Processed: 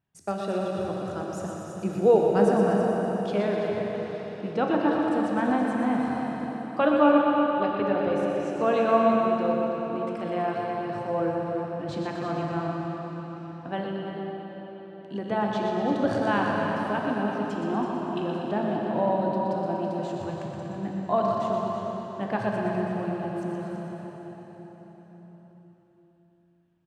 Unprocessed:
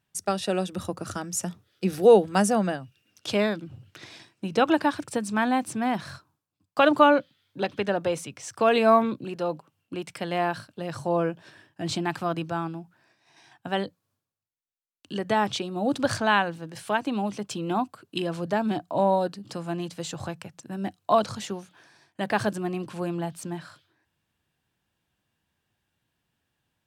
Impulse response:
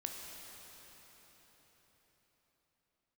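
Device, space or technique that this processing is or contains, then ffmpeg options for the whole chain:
cave: -filter_complex "[0:a]asettb=1/sr,asplit=3[a][b][c];[a]atrim=end=2.734[d];[b]atrim=start=2.73:end=3.62,asetpts=PTS-STARTPTS,afade=t=in:d=0.004:c=qsin,afade=t=out:st=0.886:d=0.004:c=qsin,highpass=210[e];[c]atrim=start=3.616[f];[d][e]acrossfade=d=0.004:c1=hsin:c2=qsin[g];[g][f]acrossfade=d=0.004:c1=qsin:c2=hsin,lowpass=f=1.2k:p=1,aecho=1:1:121|242|363|484|605|726|847:0.473|0.27|0.154|0.0876|0.0499|0.0285|0.0162,aecho=1:1:329:0.355[h];[1:a]atrim=start_sample=2205[i];[h][i]afir=irnorm=-1:irlink=0"

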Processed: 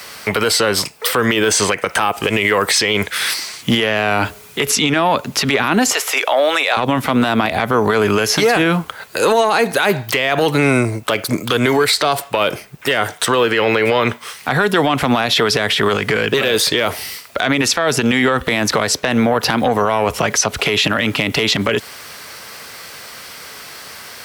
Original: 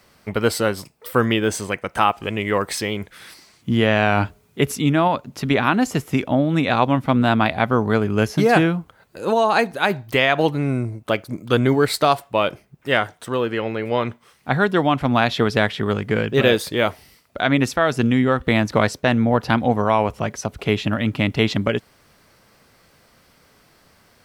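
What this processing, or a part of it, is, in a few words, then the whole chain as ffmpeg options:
mastering chain: -filter_complex "[0:a]asettb=1/sr,asplit=3[a][b][c];[a]atrim=end=5.924[d];[b]atrim=start=5.92:end=6.77,asetpts=PTS-STARTPTS,afade=t=in:d=0.004:c=qsin,afade=t=out:st=0.846:d=0.004:c=qsin,highpass=f=510:w=0.5412,highpass=f=510:w=1.3066[e];[c]atrim=start=6.766[f];[d][e]acrossfade=d=0.004:c1=hsin:c2=qsin[g];[g][f]acrossfade=d=0.004:c1=qsin:c2=hsin,highpass=53,equalizer=f=440:t=o:w=0.28:g=4,acrossover=split=250|570|7600[h][i][j][k];[h]acompressor=threshold=-26dB:ratio=4[l];[i]acompressor=threshold=-20dB:ratio=4[m];[j]acompressor=threshold=-26dB:ratio=4[n];[k]acompressor=threshold=-49dB:ratio=4[o];[l][m][n][o]amix=inputs=4:normalize=0,acompressor=threshold=-19dB:ratio=3,asoftclip=type=tanh:threshold=-12.5dB,tiltshelf=f=670:g=-8,asoftclip=type=hard:threshold=-10.5dB,alimiter=level_in=21dB:limit=-1dB:release=50:level=0:latency=1,volume=-4.5dB"

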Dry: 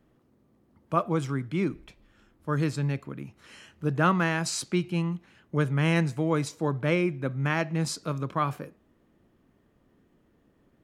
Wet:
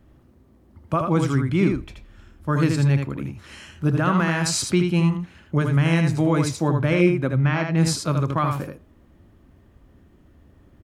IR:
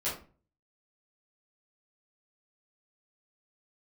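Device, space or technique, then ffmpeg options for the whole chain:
car stereo with a boomy subwoofer: -filter_complex "[0:a]lowshelf=f=110:t=q:w=1.5:g=6.5,alimiter=limit=-17dB:level=0:latency=1:release=110,asplit=3[a][b][c];[a]afade=t=out:st=7.36:d=0.02[d];[b]lowpass=f=5.2k:w=0.5412,lowpass=f=5.2k:w=1.3066,afade=t=in:st=7.36:d=0.02,afade=t=out:st=7.76:d=0.02[e];[c]afade=t=in:st=7.76:d=0.02[f];[d][e][f]amix=inputs=3:normalize=0,equalizer=f=84:w=0.41:g=4,bandreject=f=460:w=12,aecho=1:1:79:0.562,volume=6.5dB"

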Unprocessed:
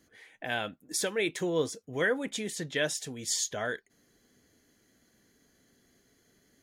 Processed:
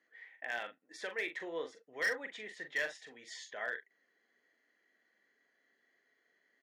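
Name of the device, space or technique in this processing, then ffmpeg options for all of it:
megaphone: -filter_complex "[0:a]highpass=520,lowpass=2.9k,equalizer=f=1.9k:t=o:w=0.27:g=11.5,asoftclip=type=hard:threshold=-21.5dB,asplit=2[a][b];[b]adelay=42,volume=-8dB[c];[a][c]amix=inputs=2:normalize=0,volume=-7.5dB"

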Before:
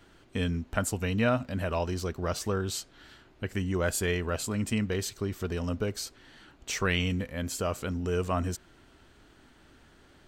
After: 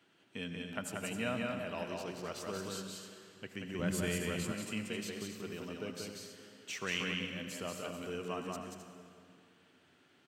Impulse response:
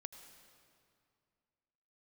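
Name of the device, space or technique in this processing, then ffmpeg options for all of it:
stadium PA: -filter_complex "[0:a]highpass=f=130:w=0.5412,highpass=f=130:w=1.3066,equalizer=f=2.7k:t=o:w=0.75:g=7,aecho=1:1:183.7|262.4:0.708|0.355[a];[1:a]atrim=start_sample=2205[b];[a][b]afir=irnorm=-1:irlink=0,asettb=1/sr,asplit=3[c][d][e];[c]atrim=end=3.794[f];[d]atrim=start=3.79:end=4.52,asetpts=PTS-STARTPTS,afade=t=in:d=0.004:c=qsin,afade=t=out:st=0.726:d=0.004:c=qsin,bass=f=250:g=13,treble=f=4k:g=2[g];[e]atrim=start=4.516[h];[f][g]acrossfade=d=0.004:c1=hsin:c2=qsin[i];[i][h]acrossfade=d=0.004:c1=qsin:c2=hsin,volume=-6.5dB"

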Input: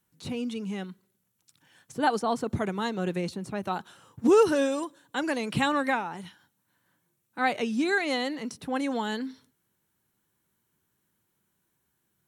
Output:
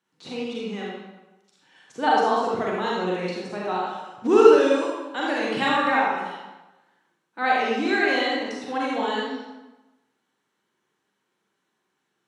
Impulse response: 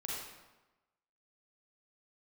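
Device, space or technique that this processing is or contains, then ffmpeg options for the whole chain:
supermarket ceiling speaker: -filter_complex "[0:a]highpass=290,lowpass=5.1k[a];[1:a]atrim=start_sample=2205[b];[a][b]afir=irnorm=-1:irlink=0,volume=5dB"

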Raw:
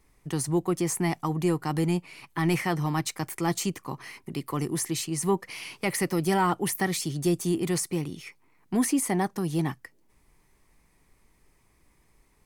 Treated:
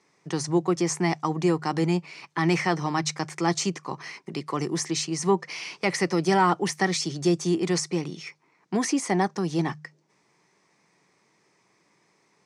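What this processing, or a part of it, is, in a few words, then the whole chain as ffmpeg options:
television speaker: -af "highpass=f=160:w=0.5412,highpass=f=160:w=1.3066,equalizer=f=250:t=q:w=4:g=-8,equalizer=f=3k:t=q:w=4:g=-3,equalizer=f=5.6k:t=q:w=4:g=5,lowpass=f=7k:w=0.5412,lowpass=f=7k:w=1.3066,bandreject=f=50.83:t=h:w=4,bandreject=f=101.66:t=h:w=4,bandreject=f=152.49:t=h:w=4,volume=4dB"

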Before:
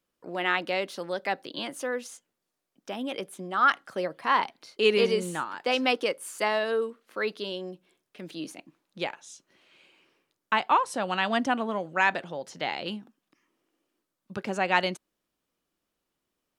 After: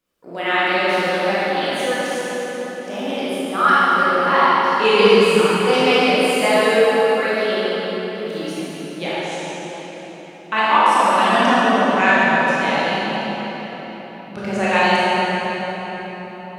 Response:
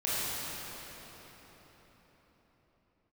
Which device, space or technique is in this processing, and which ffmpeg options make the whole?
cathedral: -filter_complex "[1:a]atrim=start_sample=2205[a];[0:a][a]afir=irnorm=-1:irlink=0,volume=2dB"

